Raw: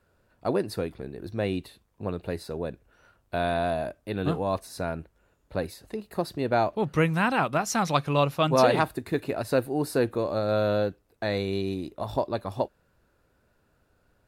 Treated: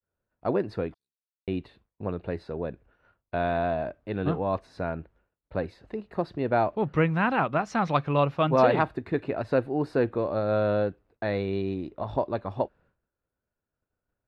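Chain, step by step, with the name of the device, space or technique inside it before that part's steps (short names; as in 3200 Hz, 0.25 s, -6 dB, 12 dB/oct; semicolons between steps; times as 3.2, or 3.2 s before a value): 0.94–1.48 inverse Chebyshev high-pass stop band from 2000 Hz, stop band 60 dB; hearing-loss simulation (LPF 2500 Hz 12 dB/oct; expander -54 dBFS)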